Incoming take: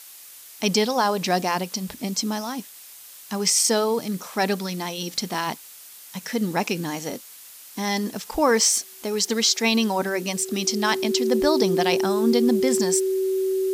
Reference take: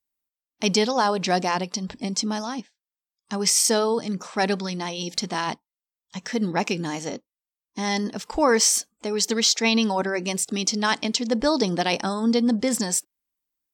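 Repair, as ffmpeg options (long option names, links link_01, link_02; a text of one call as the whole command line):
ffmpeg -i in.wav -af "bandreject=frequency=380:width=30,afftdn=noise_reduction=30:noise_floor=-44" out.wav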